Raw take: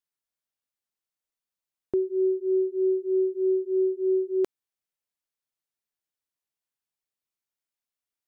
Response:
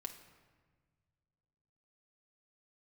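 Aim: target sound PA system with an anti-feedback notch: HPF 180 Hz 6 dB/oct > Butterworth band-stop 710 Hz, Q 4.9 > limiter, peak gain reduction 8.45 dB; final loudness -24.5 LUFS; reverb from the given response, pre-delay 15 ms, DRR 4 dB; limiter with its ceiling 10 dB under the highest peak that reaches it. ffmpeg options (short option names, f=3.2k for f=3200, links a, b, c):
-filter_complex "[0:a]alimiter=level_in=4.5dB:limit=-24dB:level=0:latency=1,volume=-4.5dB,asplit=2[a][b];[1:a]atrim=start_sample=2205,adelay=15[c];[b][c]afir=irnorm=-1:irlink=0,volume=-1dB[d];[a][d]amix=inputs=2:normalize=0,highpass=f=180:p=1,asuperstop=centerf=710:order=8:qfactor=4.9,volume=18.5dB,alimiter=limit=-19dB:level=0:latency=1"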